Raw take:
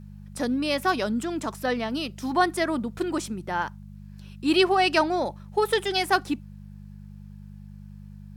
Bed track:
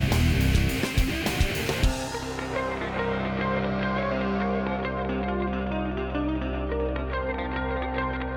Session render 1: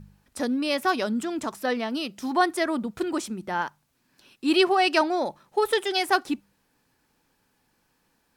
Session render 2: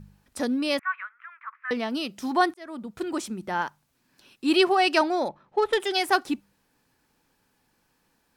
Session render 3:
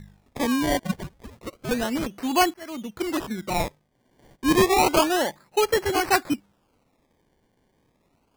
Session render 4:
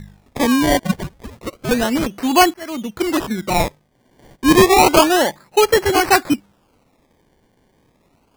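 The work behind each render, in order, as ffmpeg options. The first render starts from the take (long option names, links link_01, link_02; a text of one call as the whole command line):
ffmpeg -i in.wav -af "bandreject=frequency=50:width_type=h:width=4,bandreject=frequency=100:width_type=h:width=4,bandreject=frequency=150:width_type=h:width=4,bandreject=frequency=200:width_type=h:width=4" out.wav
ffmpeg -i in.wav -filter_complex "[0:a]asettb=1/sr,asplit=3[link_01][link_02][link_03];[link_01]atrim=end=0.794[link_04];[link_02]atrim=start=0.79:end=1.71,asetpts=PTS-STARTPTS,afade=type=in:duration=0.004:curve=qsin,afade=type=out:start_time=0.916:duration=0.004:curve=qsin,asuperpass=centerf=1600:order=8:qfactor=1.4[link_05];[link_03]atrim=start=1.706[link_06];[link_04][link_05]acrossfade=duration=0.004:curve1=hsin:curve2=qsin[link_07];[link_07][link_06]acrossfade=duration=0.004:curve1=qsin:curve2=hsin,asettb=1/sr,asplit=3[link_08][link_09][link_10];[link_08]atrim=end=5.284[link_11];[link_09]atrim=start=5.28:end=5.8,asetpts=PTS-STARTPTS,afade=type=in:duration=0.004:curve=qsin,afade=type=out:start_time=0.516:duration=0.004:curve=qsin,adynamicsmooth=sensitivity=2:basefreq=2800[link_12];[link_10]atrim=start=5.796[link_13];[link_11][link_12]acrossfade=duration=0.004:curve1=hsin:curve2=qsin[link_14];[link_14][link_13]acrossfade=duration=0.004:curve1=qsin:curve2=hsin,asplit=2[link_15][link_16];[link_15]atrim=end=2.54,asetpts=PTS-STARTPTS,afade=type=out:start_time=2.536:duration=0.004:curve=hsin[link_17];[link_16]atrim=start=2.54,asetpts=PTS-STARTPTS,afade=type=in:duration=0.99:curve=qsin[link_18];[link_17][link_18]concat=n=2:v=0:a=1" out.wav
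ffmpeg -i in.wav -filter_complex "[0:a]asplit=2[link_01][link_02];[link_02]volume=20dB,asoftclip=hard,volume=-20dB,volume=-8.5dB[link_03];[link_01][link_03]amix=inputs=2:normalize=0,acrusher=samples=23:mix=1:aa=0.000001:lfo=1:lforange=23:lforate=0.3" out.wav
ffmpeg -i in.wav -af "volume=8dB,alimiter=limit=-1dB:level=0:latency=1" out.wav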